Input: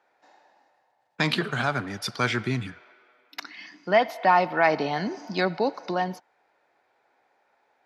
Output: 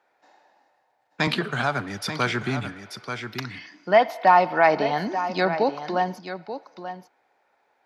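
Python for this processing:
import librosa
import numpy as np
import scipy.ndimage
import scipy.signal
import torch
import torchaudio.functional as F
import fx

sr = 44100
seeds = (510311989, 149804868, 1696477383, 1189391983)

y = fx.dynamic_eq(x, sr, hz=790.0, q=0.86, threshold_db=-30.0, ratio=4.0, max_db=4)
y = y + 10.0 ** (-11.0 / 20.0) * np.pad(y, (int(885 * sr / 1000.0), 0))[:len(y)]
y = fx.band_squash(y, sr, depth_pct=40, at=(1.27, 3.59))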